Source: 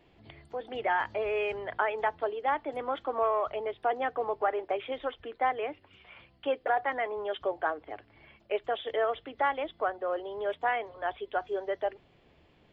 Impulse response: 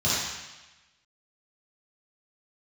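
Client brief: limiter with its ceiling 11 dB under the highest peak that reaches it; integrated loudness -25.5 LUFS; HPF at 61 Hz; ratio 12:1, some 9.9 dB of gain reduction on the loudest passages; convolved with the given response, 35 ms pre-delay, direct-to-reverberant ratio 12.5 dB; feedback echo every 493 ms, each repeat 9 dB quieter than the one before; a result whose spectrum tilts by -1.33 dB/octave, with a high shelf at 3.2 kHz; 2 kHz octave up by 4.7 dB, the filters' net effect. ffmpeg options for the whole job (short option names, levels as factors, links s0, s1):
-filter_complex "[0:a]highpass=61,equalizer=f=2000:t=o:g=7.5,highshelf=f=3200:g=-5.5,acompressor=threshold=0.0282:ratio=12,alimiter=level_in=1.68:limit=0.0631:level=0:latency=1,volume=0.596,aecho=1:1:493|986|1479|1972:0.355|0.124|0.0435|0.0152,asplit=2[s0][s1];[1:a]atrim=start_sample=2205,adelay=35[s2];[s1][s2]afir=irnorm=-1:irlink=0,volume=0.0473[s3];[s0][s3]amix=inputs=2:normalize=0,volume=4.47"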